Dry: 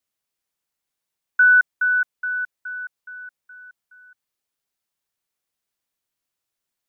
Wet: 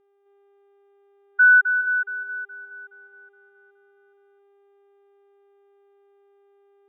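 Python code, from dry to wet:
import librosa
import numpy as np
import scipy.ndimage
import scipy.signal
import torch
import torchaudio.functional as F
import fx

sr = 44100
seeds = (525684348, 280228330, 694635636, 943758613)

y = fx.dmg_buzz(x, sr, base_hz=400.0, harmonics=9, level_db=-47.0, tilt_db=-8, odd_only=False)
y = y + 10.0 ** (-5.5 / 20.0) * np.pad(y, (int(260 * sr / 1000.0), 0))[:len(y)]
y = fx.spectral_expand(y, sr, expansion=1.5)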